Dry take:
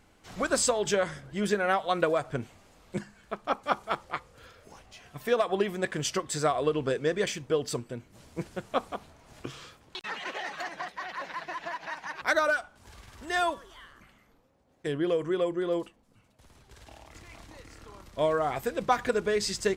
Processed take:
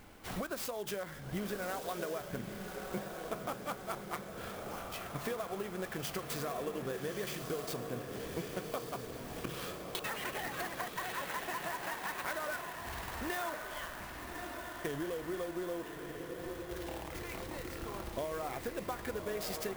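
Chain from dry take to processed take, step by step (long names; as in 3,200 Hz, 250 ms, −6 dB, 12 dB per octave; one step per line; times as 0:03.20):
mains-hum notches 50/100/150 Hz
in parallel at −0.5 dB: brickwall limiter −23 dBFS, peak gain reduction 11.5 dB
on the sum: downward compressor 12 to 1, threshold −36 dBFS, peak gain reduction 20 dB
feedback delay with all-pass diffusion 1,200 ms, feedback 59%, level −5 dB
converter with an unsteady clock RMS 0.036 ms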